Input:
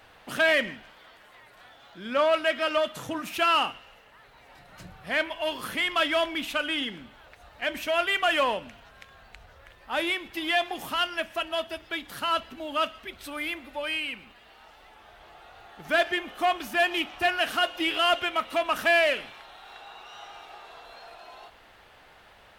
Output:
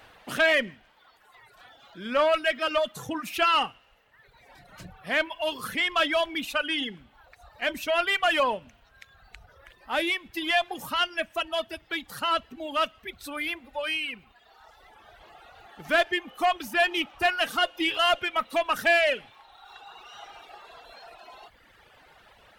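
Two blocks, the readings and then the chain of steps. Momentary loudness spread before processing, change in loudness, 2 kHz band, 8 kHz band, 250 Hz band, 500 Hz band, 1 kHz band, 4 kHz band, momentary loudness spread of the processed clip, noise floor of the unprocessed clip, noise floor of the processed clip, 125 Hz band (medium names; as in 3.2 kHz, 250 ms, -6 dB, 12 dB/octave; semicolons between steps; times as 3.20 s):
22 LU, +0.5 dB, +0.5 dB, +0.5 dB, 0.0 dB, 0.0 dB, +0.5 dB, +0.5 dB, 12 LU, -54 dBFS, -60 dBFS, +0.5 dB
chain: single-diode clipper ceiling -14 dBFS; reverb removal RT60 1.5 s; trim +2 dB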